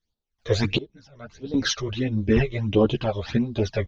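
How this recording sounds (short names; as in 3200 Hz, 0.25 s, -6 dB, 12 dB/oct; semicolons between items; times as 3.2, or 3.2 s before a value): phasing stages 12, 1.5 Hz, lowest notch 250–2200 Hz; random-step tremolo 2.6 Hz, depth 95%; a shimmering, thickened sound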